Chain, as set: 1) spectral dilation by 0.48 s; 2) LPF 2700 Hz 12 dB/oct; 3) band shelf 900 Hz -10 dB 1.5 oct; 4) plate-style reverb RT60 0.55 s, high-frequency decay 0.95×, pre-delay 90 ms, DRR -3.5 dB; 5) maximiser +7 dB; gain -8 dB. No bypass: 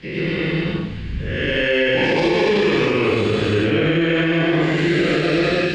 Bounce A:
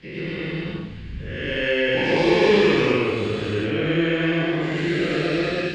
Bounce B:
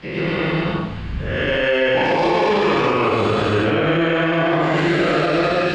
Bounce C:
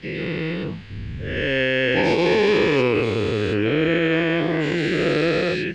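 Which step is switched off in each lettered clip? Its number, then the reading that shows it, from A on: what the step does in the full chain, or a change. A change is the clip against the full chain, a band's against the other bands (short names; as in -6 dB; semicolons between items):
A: 5, loudness change -3.0 LU; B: 3, 1 kHz band +8.5 dB; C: 4, crest factor change +2.5 dB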